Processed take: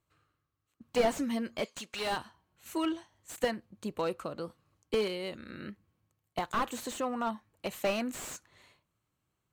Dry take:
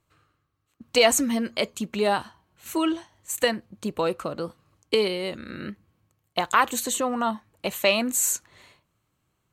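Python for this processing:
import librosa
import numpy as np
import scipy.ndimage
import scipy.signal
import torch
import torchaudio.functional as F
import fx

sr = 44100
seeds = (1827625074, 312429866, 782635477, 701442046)

y = fx.cheby_harmonics(x, sr, harmonics=(3,), levels_db=(-14,), full_scale_db=-4.5)
y = fx.weighting(y, sr, curve='ITU-R 468', at=(1.64, 2.15), fade=0.02)
y = fx.slew_limit(y, sr, full_power_hz=54.0)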